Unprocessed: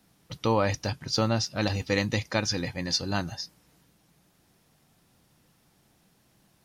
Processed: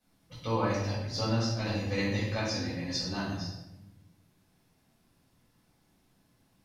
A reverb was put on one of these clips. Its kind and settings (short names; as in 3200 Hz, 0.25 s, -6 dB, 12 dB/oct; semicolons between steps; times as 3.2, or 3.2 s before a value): shoebox room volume 370 m³, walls mixed, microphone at 5.5 m; gain -17.5 dB